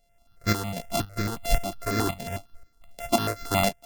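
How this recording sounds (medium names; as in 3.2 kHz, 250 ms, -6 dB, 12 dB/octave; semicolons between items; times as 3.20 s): a buzz of ramps at a fixed pitch in blocks of 64 samples; tremolo saw up 1.9 Hz, depth 65%; notches that jump at a steady rate 11 Hz 330–3000 Hz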